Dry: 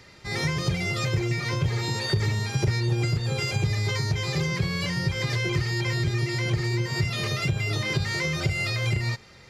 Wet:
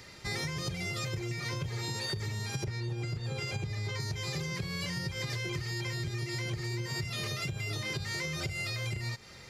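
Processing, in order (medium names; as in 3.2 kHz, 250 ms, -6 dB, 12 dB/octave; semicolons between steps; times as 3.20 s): treble shelf 6.1 kHz +8 dB, from 2.64 s -3 dB, from 4.00 s +8.5 dB; compression 10:1, threshold -31 dBFS, peak gain reduction 13 dB; trim -1 dB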